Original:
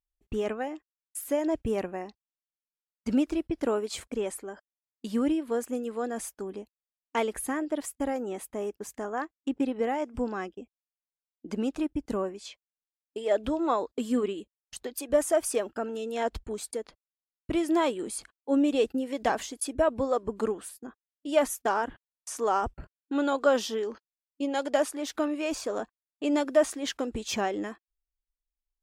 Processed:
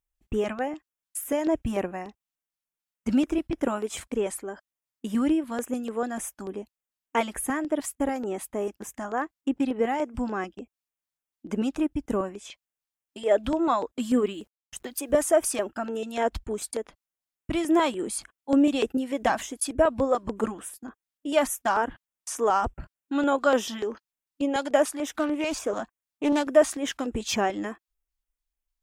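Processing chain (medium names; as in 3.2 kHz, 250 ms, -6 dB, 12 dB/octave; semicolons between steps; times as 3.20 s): LFO notch square 3.4 Hz 440–4400 Hz; 14.06–15.17 s: word length cut 12-bit, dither none; 25.17–26.45 s: loudspeaker Doppler distortion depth 0.23 ms; trim +4 dB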